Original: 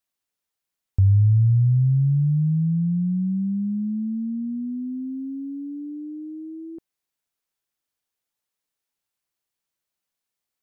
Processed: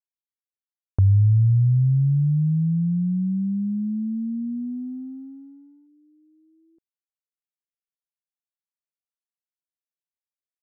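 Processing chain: gate -30 dBFS, range -24 dB

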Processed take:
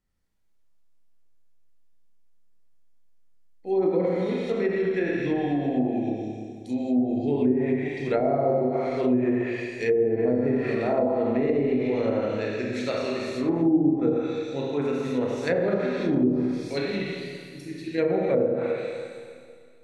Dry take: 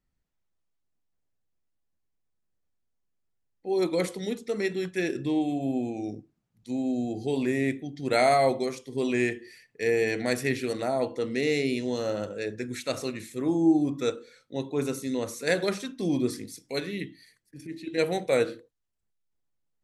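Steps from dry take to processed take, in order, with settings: Schroeder reverb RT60 2.1 s, combs from 28 ms, DRR -3.5 dB; low-pass that closes with the level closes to 490 Hz, closed at -16.5 dBFS

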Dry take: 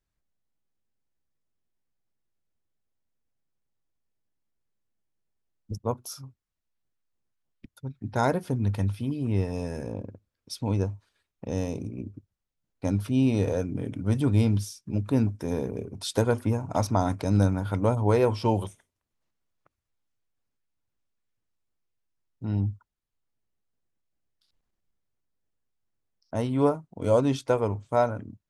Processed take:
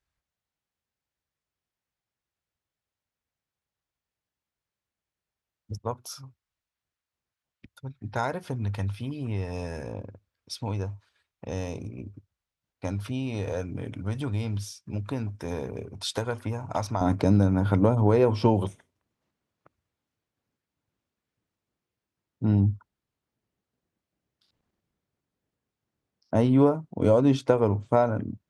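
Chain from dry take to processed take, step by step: high-pass 61 Hz; treble shelf 7.1 kHz -11.5 dB; compression 5:1, threshold -24 dBFS, peak gain reduction 8 dB; peaking EQ 240 Hz -9.5 dB 2.6 oct, from 17.01 s +4 dB; trim +5 dB

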